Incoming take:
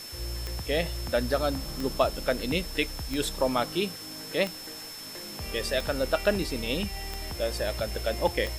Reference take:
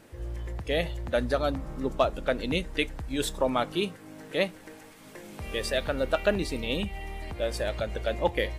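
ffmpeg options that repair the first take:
-af "adeclick=t=4,bandreject=f=5.3k:w=30,afwtdn=0.0063"

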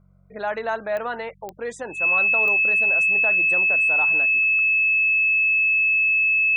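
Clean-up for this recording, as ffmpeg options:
-af "adeclick=t=4,bandreject=f=46.5:t=h:w=4,bandreject=f=93:t=h:w=4,bandreject=f=139.5:t=h:w=4,bandreject=f=186:t=h:w=4,bandreject=f=2.6k:w=30"

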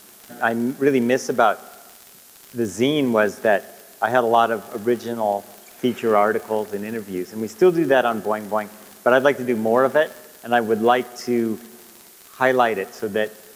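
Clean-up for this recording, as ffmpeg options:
-af "adeclick=t=4,afftdn=nr=19:nf=-46"

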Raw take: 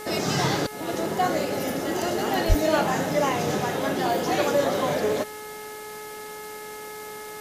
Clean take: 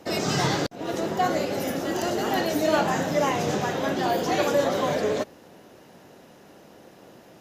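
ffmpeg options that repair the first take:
-filter_complex "[0:a]bandreject=f=425.2:t=h:w=4,bandreject=f=850.4:t=h:w=4,bandreject=f=1.2756k:t=h:w=4,bandreject=f=1.7008k:t=h:w=4,bandreject=f=2.126k:t=h:w=4,asplit=3[a][b][c];[a]afade=t=out:st=2.48:d=0.02[d];[b]highpass=f=140:w=0.5412,highpass=f=140:w=1.3066,afade=t=in:st=2.48:d=0.02,afade=t=out:st=2.6:d=0.02[e];[c]afade=t=in:st=2.6:d=0.02[f];[d][e][f]amix=inputs=3:normalize=0,afwtdn=0.0071"

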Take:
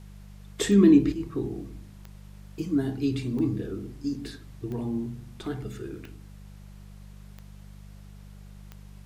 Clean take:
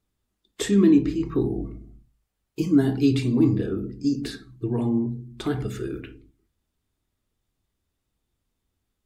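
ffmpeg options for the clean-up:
-af "adeclick=t=4,bandreject=f=49.7:t=h:w=4,bandreject=f=99.4:t=h:w=4,bandreject=f=149.1:t=h:w=4,bandreject=f=198.8:t=h:w=4,agate=range=-21dB:threshold=-38dB,asetnsamples=n=441:p=0,asendcmd='1.12 volume volume 7dB',volume=0dB"

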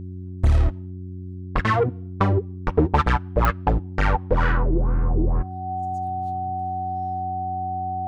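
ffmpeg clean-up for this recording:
-af "adeclick=t=4,bandreject=f=91.8:t=h:w=4,bandreject=f=183.6:t=h:w=4,bandreject=f=275.4:t=h:w=4,bandreject=f=367.2:t=h:w=4,bandreject=f=750:w=30"

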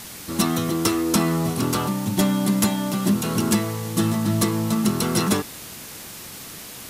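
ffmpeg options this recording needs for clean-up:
-af "afftdn=nr=29:nf=-38"

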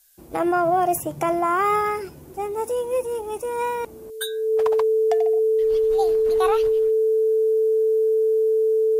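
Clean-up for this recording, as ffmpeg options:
-af "bandreject=f=440:w=30,agate=range=-21dB:threshold=-30dB"

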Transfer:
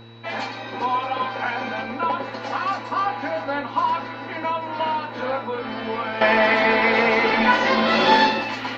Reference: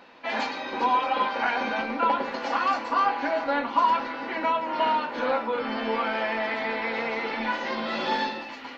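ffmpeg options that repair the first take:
-af "bandreject=f=114.8:t=h:w=4,bandreject=f=229.6:t=h:w=4,bandreject=f=344.4:t=h:w=4,bandreject=f=459.2:t=h:w=4,bandreject=f=3.9k:w=30,asetnsamples=n=441:p=0,asendcmd='6.21 volume volume -11dB',volume=0dB"

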